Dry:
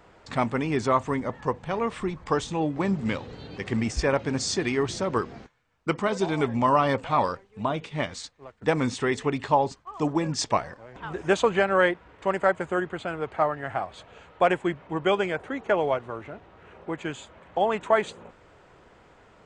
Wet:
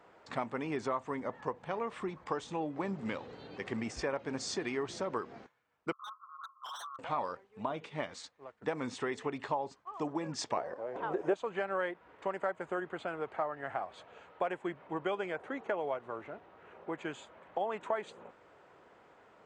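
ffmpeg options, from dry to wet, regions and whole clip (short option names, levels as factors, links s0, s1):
-filter_complex "[0:a]asettb=1/sr,asplit=3[s0][s1][s2];[s0]atrim=end=5.924[s3];[s1]atrim=start=5.92:end=6.99,asetpts=PTS-STARTPTS,afade=t=in:d=0.004:c=qsin,afade=t=out:st=1.066:d=0.004:c=qsin,asuperpass=centerf=1200:order=12:qfactor=3.8,aeval=exprs='0.0224*(abs(mod(val(0)/0.0224+3,4)-2)-1)':c=same[s4];[s2]atrim=start=6.986[s5];[s3][s4]acrossfade=d=0.004:c1=hsin:c2=qsin[s6];[s6][s5]acrossfade=d=0.004:c1=qsin:c2=hsin,asettb=1/sr,asplit=3[s7][s8][s9];[s7]atrim=end=10.574[s10];[s8]atrim=start=10.57:end=11.34,asetpts=PTS-STARTPTS,afade=t=in:d=0.004:c=qsin,afade=t=out:st=0.766:d=0.004:c=qsin,equalizer=f=490:w=0.71:g=14,acompressor=mode=upward:threshold=0.0282:ratio=2.5:attack=3.2:release=140:knee=2.83:detection=peak[s11];[s9]atrim=start=11.336[s12];[s10][s11]acrossfade=d=0.004:c1=hsin:c2=qsin[s13];[s13][s12]acrossfade=d=0.004:c1=qsin:c2=hsin,highpass=f=470:p=1,highshelf=f=2100:g=-9.5,acompressor=threshold=0.0282:ratio=3,volume=0.841"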